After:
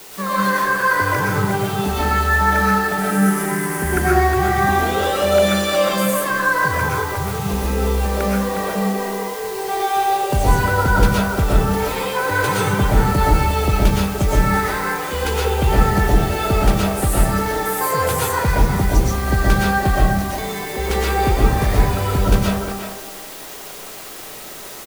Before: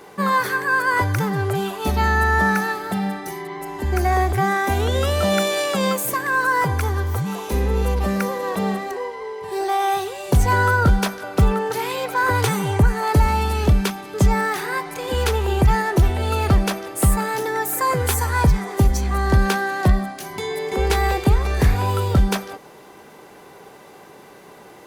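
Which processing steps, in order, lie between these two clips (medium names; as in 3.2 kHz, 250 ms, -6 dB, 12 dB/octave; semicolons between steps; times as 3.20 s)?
word length cut 6-bit, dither triangular; 2.98–3.99 s: fifteen-band graphic EQ 160 Hz +11 dB, 400 Hz +6 dB, 1.6 kHz +12 dB, 4 kHz -6 dB, 10 kHz +11 dB; speakerphone echo 360 ms, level -7 dB; reverberation RT60 0.80 s, pre-delay 80 ms, DRR -5 dB; trim -4 dB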